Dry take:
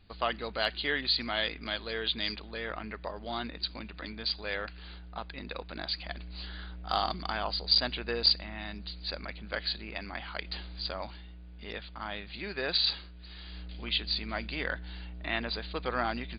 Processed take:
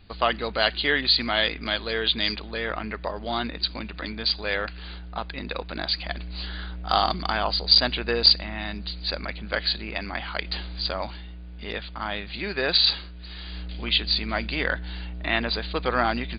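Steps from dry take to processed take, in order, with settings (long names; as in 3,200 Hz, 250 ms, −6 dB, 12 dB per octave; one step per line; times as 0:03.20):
downsampling to 11,025 Hz
level +8 dB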